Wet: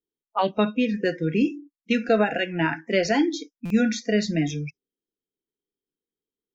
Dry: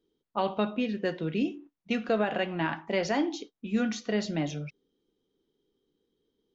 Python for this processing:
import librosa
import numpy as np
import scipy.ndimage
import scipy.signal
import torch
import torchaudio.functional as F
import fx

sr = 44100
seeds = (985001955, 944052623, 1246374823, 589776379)

y = fx.noise_reduce_blind(x, sr, reduce_db=25)
y = fx.buffer_glitch(y, sr, at_s=(3.65,), block=256, repeats=8)
y = y * 10.0 ** (7.0 / 20.0)